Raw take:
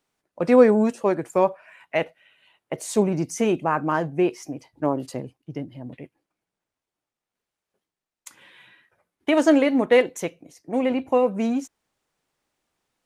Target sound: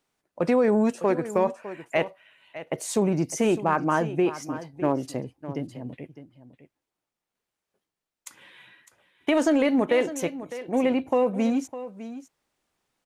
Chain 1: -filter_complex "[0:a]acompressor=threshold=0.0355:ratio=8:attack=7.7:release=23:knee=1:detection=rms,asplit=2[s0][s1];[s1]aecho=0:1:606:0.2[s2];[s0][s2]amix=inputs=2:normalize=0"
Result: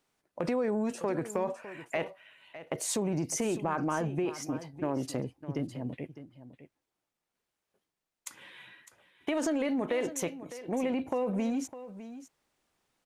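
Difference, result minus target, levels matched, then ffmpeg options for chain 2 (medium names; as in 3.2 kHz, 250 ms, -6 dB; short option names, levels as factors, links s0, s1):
compression: peak gain reduction +9 dB
-filter_complex "[0:a]acompressor=threshold=0.119:ratio=8:attack=7.7:release=23:knee=1:detection=rms,asplit=2[s0][s1];[s1]aecho=0:1:606:0.2[s2];[s0][s2]amix=inputs=2:normalize=0"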